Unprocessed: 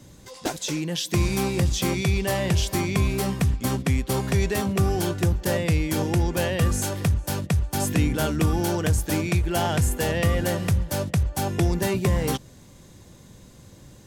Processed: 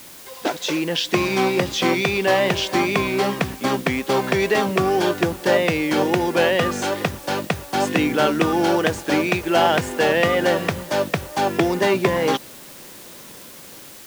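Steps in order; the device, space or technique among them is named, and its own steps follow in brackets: dictaphone (BPF 320–3700 Hz; AGC gain up to 6.5 dB; wow and flutter; white noise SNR 21 dB); gain +3 dB

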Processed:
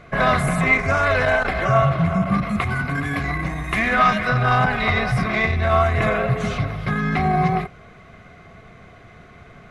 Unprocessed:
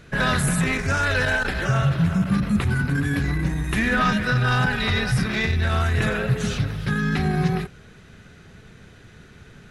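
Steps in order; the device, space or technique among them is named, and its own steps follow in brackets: inside a helmet (high shelf 4100 Hz -9 dB; small resonant body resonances 700/1100/2100 Hz, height 16 dB, ringing for 30 ms); 2.41–4.29 tilt shelf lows -3.5 dB, about 1100 Hz

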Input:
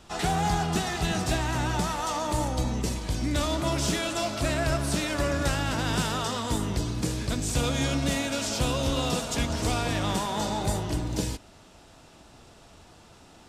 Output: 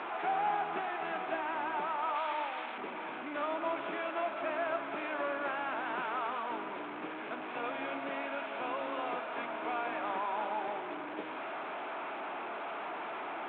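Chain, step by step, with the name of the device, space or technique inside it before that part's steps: digital answering machine (BPF 310–3400 Hz; delta modulation 16 kbps, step -28.5 dBFS; speaker cabinet 410–3400 Hz, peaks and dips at 500 Hz -7 dB, 1900 Hz -7 dB, 2900 Hz -8 dB); 2.15–2.78 tilt +4 dB/oct; gain -2 dB

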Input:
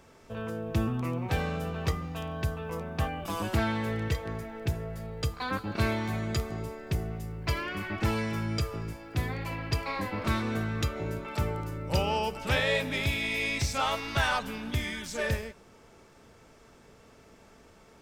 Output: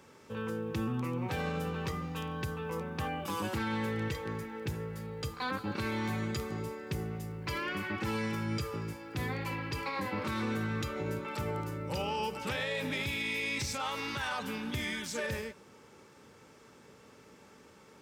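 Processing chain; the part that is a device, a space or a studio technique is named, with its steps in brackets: PA system with an anti-feedback notch (HPF 110 Hz 12 dB/oct; Butterworth band-stop 670 Hz, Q 6.7; limiter -25.5 dBFS, peak gain reduction 11.5 dB)

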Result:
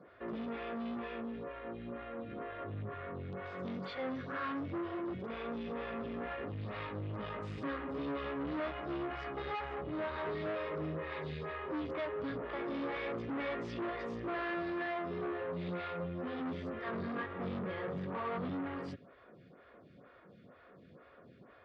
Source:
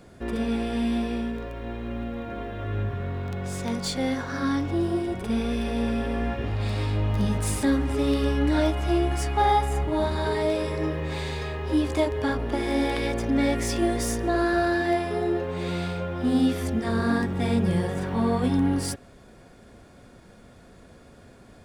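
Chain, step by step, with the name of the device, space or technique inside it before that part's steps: vibe pedal into a guitar amplifier (photocell phaser 2.1 Hz; tube stage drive 31 dB, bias 0.3; speaker cabinet 110–3500 Hz, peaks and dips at 160 Hz +4 dB, 230 Hz -3 dB, 530 Hz +3 dB, 830 Hz -4 dB, 1200 Hz +7 dB, 1900 Hz +3 dB); gain -4 dB

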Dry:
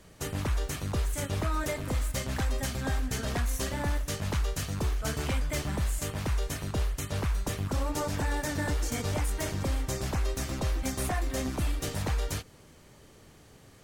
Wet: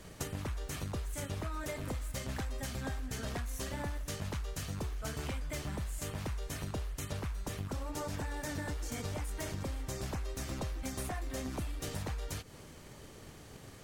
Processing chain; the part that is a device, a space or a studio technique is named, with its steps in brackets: drum-bus smash (transient shaper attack +6 dB, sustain +1 dB; compressor 10:1, threshold -37 dBFS, peak gain reduction 15 dB; soft clip -28.5 dBFS, distortion -27 dB); gain +2.5 dB

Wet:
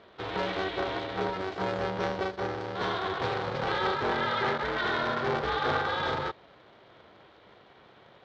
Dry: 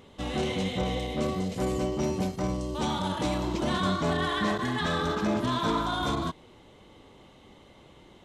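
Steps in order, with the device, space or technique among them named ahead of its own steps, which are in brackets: HPF 160 Hz 12 dB/oct; ring modulator pedal into a guitar cabinet (polarity switched at an audio rate 190 Hz; speaker cabinet 99–4200 Hz, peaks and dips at 170 Hz -5 dB, 260 Hz -4 dB, 1500 Hz +4 dB, 2700 Hz -5 dB)

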